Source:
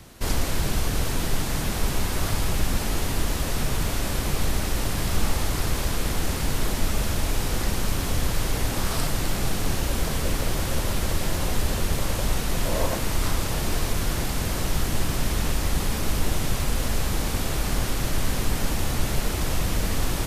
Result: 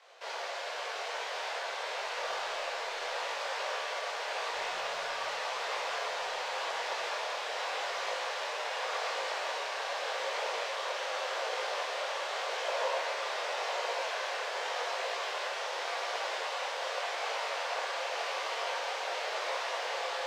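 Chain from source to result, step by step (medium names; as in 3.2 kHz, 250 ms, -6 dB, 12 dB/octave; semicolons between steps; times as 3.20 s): tracing distortion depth 0.055 ms; steep high-pass 490 Hz 48 dB/octave; band-stop 1.3 kHz, Q 25; in parallel at 0 dB: peak limiter -24.5 dBFS, peak gain reduction 9 dB; 1.86–3.13 s: on the sum: hard clipper -20 dBFS, distortion -37 dB; 4.53–5.34 s: word length cut 6-bit, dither none; distance through air 160 m; on a send: echo that smears into a reverb 1163 ms, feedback 77%, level -5.5 dB; on the sum: Schroeder reverb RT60 1.8 s, combs from 33 ms, DRR -0.5 dB; detune thickener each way 30 cents; trim -6.5 dB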